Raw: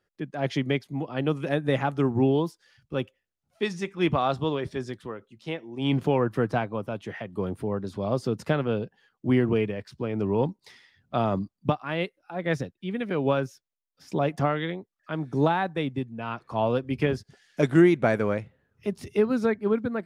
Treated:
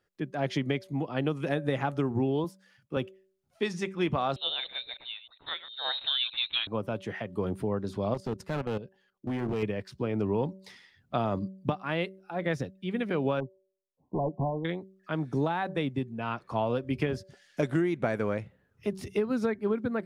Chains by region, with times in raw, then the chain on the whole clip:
0:02.44–0:02.97: high-pass filter 150 Hz + parametric band 4,600 Hz −6 dB 1.4 octaves
0:04.36–0:06.67: delay that plays each chunk backwards 102 ms, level −13.5 dB + high-pass filter 630 Hz 6 dB per octave + voice inversion scrambler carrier 4,000 Hz
0:08.14–0:09.63: output level in coarse steps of 14 dB + gain into a clipping stage and back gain 26.5 dB
0:13.40–0:14.65: hard clipping −23.5 dBFS + linear-phase brick-wall low-pass 1,100 Hz + expander for the loud parts, over −39 dBFS
whole clip: hum removal 190.6 Hz, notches 3; downward compressor 6 to 1, threshold −24 dBFS

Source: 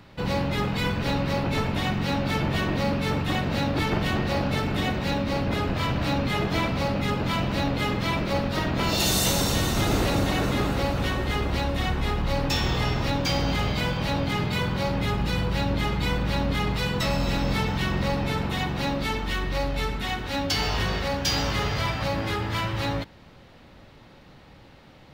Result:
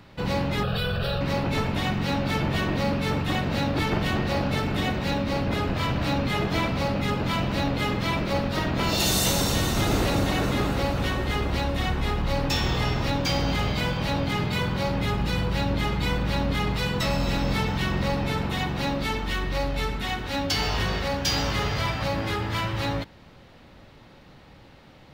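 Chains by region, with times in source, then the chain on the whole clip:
0:00.63–0:01.21: phaser with its sweep stopped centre 1,400 Hz, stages 8 + envelope flattener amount 100%
whole clip: no processing

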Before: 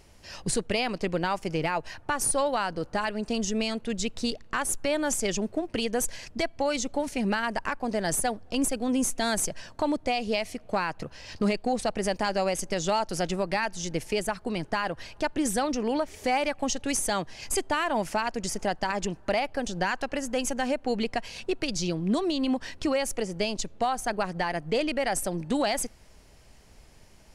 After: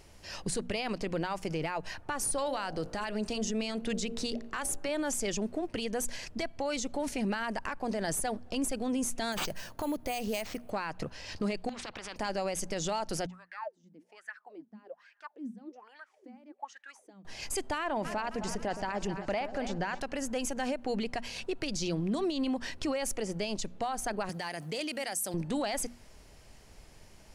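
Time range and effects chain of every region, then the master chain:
0:02.38–0:04.89: hum removal 57.41 Hz, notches 14 + multiband upward and downward compressor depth 40%
0:09.32–0:10.70: bad sample-rate conversion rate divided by 4×, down none, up hold + downward compressor 4 to 1, threshold −29 dBFS
0:11.69–0:12.16: low-pass filter 1,900 Hz + downward compressor, threshold −31 dBFS + every bin compressed towards the loudest bin 4 to 1
0:13.26–0:17.25: spectral tilt +3.5 dB per octave + LFO wah 1.2 Hz 200–1,800 Hz, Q 14
0:17.78–0:20.00: low-pass filter 3,000 Hz 6 dB per octave + echo with a time of its own for lows and highs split 620 Hz, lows 118 ms, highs 265 ms, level −13.5 dB
0:24.29–0:25.34: high-pass filter 110 Hz 24 dB per octave + first-order pre-emphasis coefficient 0.8 + envelope flattener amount 50%
whole clip: mains-hum notches 60/120/180/240 Hz; brickwall limiter −24.5 dBFS

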